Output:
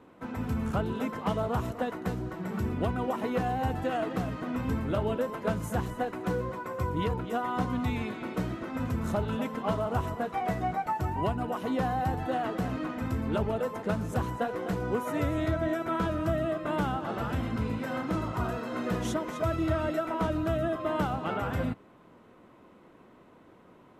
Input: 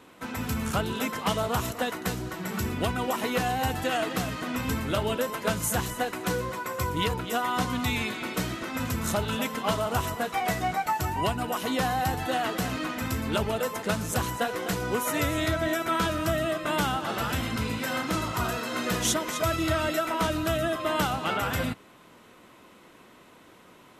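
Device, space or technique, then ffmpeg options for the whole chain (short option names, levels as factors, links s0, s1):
through cloth: -af "highshelf=f=2000:g=-18"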